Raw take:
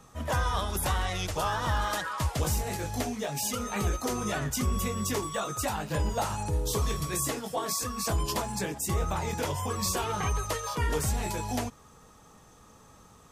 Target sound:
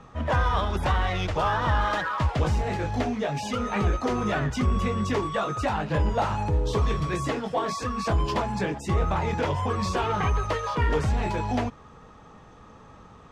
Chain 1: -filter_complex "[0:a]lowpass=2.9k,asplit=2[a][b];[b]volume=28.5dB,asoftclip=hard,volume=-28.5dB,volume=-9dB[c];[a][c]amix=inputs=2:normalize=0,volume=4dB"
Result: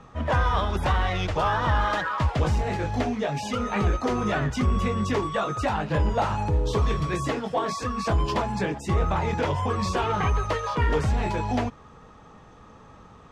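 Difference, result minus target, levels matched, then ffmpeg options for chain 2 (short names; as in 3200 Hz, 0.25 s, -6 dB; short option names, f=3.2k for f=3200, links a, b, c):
overloaded stage: distortion -5 dB
-filter_complex "[0:a]lowpass=2.9k,asplit=2[a][b];[b]volume=34.5dB,asoftclip=hard,volume=-34.5dB,volume=-9dB[c];[a][c]amix=inputs=2:normalize=0,volume=4dB"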